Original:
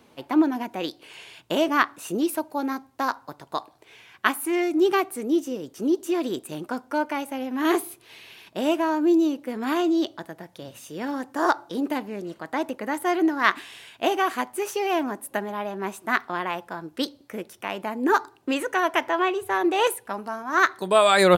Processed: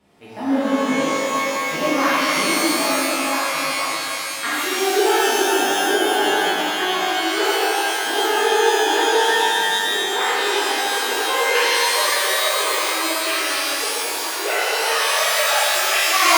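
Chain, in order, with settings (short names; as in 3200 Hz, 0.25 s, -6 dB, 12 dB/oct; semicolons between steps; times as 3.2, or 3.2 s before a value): speed glide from 83% -> 178%; shimmer reverb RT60 3.1 s, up +12 st, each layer -2 dB, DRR -12 dB; gain -9.5 dB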